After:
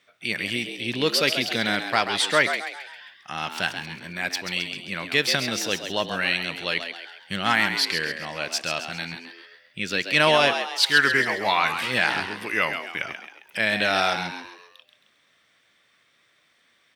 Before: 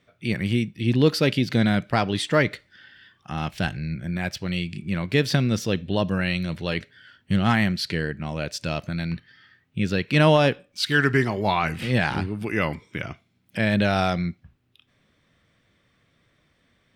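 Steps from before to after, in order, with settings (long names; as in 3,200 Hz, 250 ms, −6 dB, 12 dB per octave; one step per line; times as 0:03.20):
high-pass filter 1,400 Hz 6 dB per octave
on a send: echo with shifted repeats 134 ms, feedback 45%, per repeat +86 Hz, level −8 dB
on the sum: level +6 dB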